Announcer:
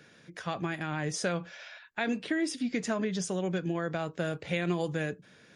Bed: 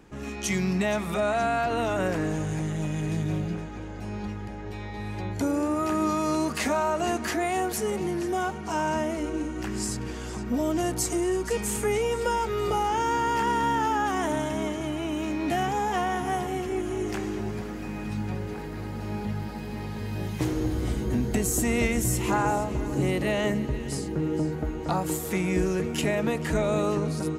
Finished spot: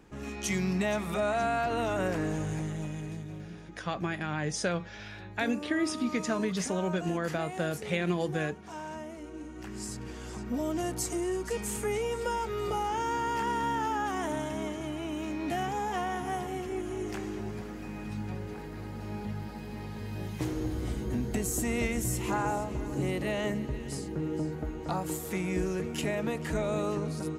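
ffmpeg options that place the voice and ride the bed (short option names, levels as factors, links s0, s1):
-filter_complex "[0:a]adelay=3400,volume=1.06[s0];[1:a]volume=1.68,afade=t=out:st=2.49:d=0.79:silence=0.316228,afade=t=in:st=9.29:d=1.08:silence=0.398107[s1];[s0][s1]amix=inputs=2:normalize=0"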